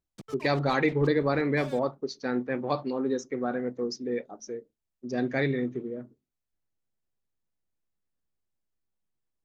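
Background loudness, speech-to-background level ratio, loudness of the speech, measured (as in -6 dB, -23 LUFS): -47.5 LUFS, 18.5 dB, -29.0 LUFS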